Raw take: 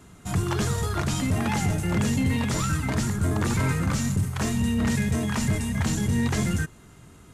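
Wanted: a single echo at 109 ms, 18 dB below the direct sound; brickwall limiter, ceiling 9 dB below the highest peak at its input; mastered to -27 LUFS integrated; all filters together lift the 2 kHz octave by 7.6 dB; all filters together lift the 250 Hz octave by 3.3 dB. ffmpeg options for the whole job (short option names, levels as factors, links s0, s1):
-af "equalizer=f=250:t=o:g=4,equalizer=f=2000:t=o:g=9,alimiter=limit=0.119:level=0:latency=1,aecho=1:1:109:0.126"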